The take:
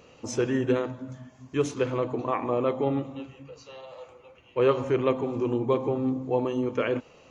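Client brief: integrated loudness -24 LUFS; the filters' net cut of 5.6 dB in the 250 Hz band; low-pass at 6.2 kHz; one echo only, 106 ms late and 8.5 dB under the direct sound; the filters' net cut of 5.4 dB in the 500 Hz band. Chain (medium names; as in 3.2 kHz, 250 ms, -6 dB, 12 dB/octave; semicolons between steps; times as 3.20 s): low-pass 6.2 kHz; peaking EQ 250 Hz -5 dB; peaking EQ 500 Hz -5 dB; delay 106 ms -8.5 dB; trim +7.5 dB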